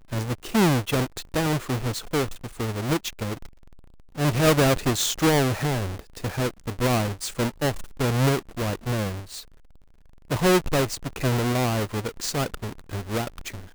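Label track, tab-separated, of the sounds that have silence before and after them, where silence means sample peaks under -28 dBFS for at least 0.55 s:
4.190000	9.360000	sound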